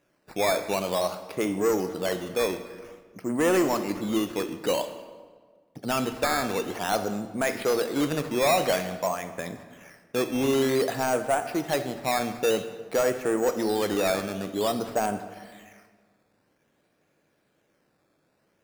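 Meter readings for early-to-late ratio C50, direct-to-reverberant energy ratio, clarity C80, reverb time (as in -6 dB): 10.5 dB, 9.0 dB, 12.0 dB, 1.6 s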